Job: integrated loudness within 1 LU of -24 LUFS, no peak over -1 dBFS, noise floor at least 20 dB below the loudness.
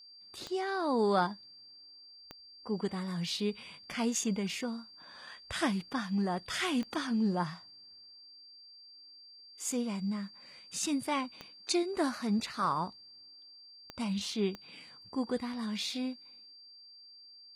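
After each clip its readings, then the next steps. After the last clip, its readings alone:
clicks 6; steady tone 4700 Hz; tone level -52 dBFS; loudness -34.0 LUFS; peak -16.0 dBFS; loudness target -24.0 LUFS
-> de-click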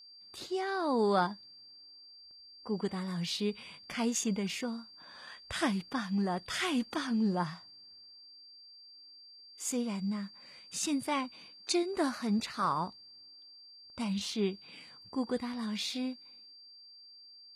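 clicks 0; steady tone 4700 Hz; tone level -52 dBFS
-> notch 4700 Hz, Q 30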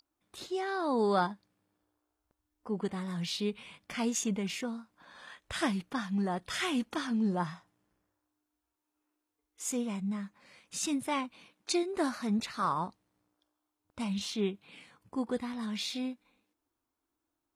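steady tone none; loudness -34.0 LUFS; peak -16.0 dBFS; loudness target -24.0 LUFS
-> gain +10 dB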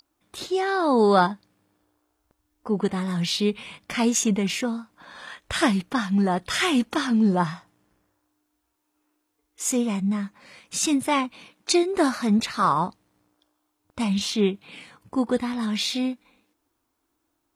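loudness -24.0 LUFS; peak -6.0 dBFS; noise floor -76 dBFS

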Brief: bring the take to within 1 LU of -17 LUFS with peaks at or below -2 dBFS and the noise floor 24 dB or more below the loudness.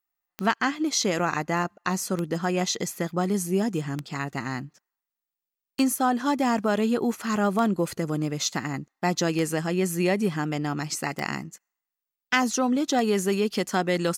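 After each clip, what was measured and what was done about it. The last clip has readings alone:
clicks 8; loudness -26.0 LUFS; peak -8.5 dBFS; loudness target -17.0 LUFS
-> de-click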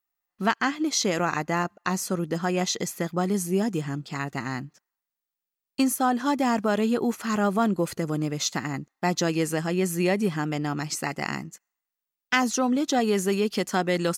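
clicks 0; loudness -26.0 LUFS; peak -8.5 dBFS; loudness target -17.0 LUFS
-> gain +9 dB; limiter -2 dBFS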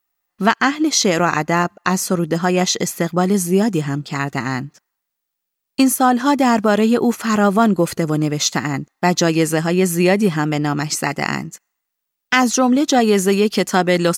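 loudness -17.0 LUFS; peak -2.0 dBFS; noise floor -79 dBFS

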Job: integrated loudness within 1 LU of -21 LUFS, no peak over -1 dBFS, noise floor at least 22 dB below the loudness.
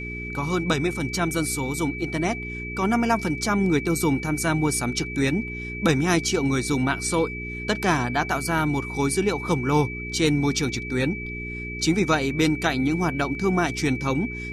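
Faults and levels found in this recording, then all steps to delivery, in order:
hum 60 Hz; harmonics up to 420 Hz; hum level -32 dBFS; steady tone 2300 Hz; tone level -33 dBFS; loudness -24.0 LUFS; peak -8.0 dBFS; loudness target -21.0 LUFS
-> de-hum 60 Hz, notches 7; notch 2300 Hz, Q 30; gain +3 dB

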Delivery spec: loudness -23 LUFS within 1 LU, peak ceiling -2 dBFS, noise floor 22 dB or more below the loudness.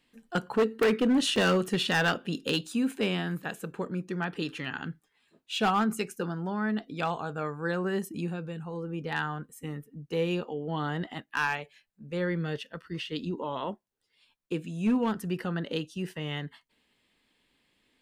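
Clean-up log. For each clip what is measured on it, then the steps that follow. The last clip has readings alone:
clipped 0.9%; flat tops at -19.5 dBFS; dropouts 1; longest dropout 2.4 ms; loudness -30.5 LUFS; peak -19.5 dBFS; loudness target -23.0 LUFS
-> clip repair -19.5 dBFS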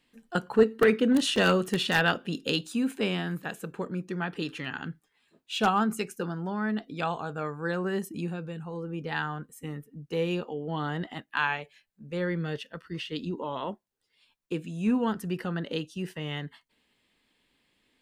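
clipped 0.0%; dropouts 1; longest dropout 2.4 ms
-> interpolate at 1.36, 2.4 ms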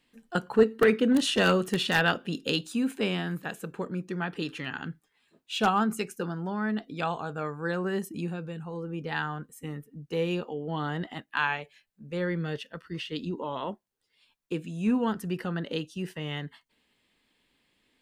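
dropouts 0; loudness -30.0 LUFS; peak -10.5 dBFS; loudness target -23.0 LUFS
-> gain +7 dB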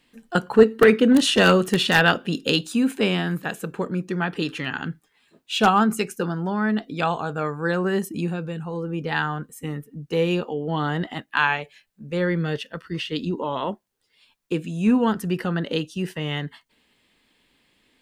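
loudness -23.0 LUFS; peak -3.5 dBFS; noise floor -69 dBFS

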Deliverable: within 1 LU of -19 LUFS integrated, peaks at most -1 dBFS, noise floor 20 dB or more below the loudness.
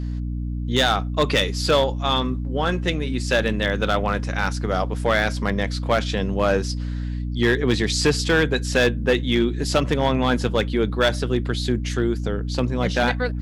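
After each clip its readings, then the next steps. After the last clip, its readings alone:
clipped 0.7%; flat tops at -11.0 dBFS; hum 60 Hz; harmonics up to 300 Hz; hum level -24 dBFS; loudness -22.0 LUFS; peak -11.0 dBFS; loudness target -19.0 LUFS
-> clip repair -11 dBFS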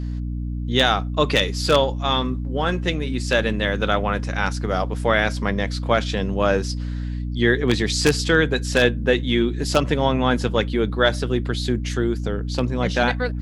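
clipped 0.0%; hum 60 Hz; harmonics up to 300 Hz; hum level -24 dBFS
-> notches 60/120/180/240/300 Hz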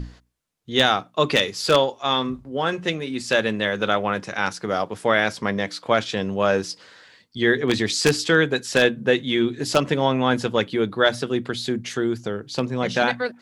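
hum none; loudness -22.0 LUFS; peak -2.0 dBFS; loudness target -19.0 LUFS
-> gain +3 dB; limiter -1 dBFS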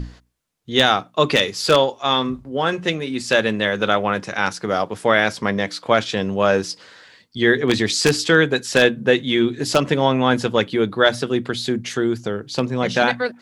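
loudness -19.0 LUFS; peak -1.0 dBFS; noise floor -51 dBFS

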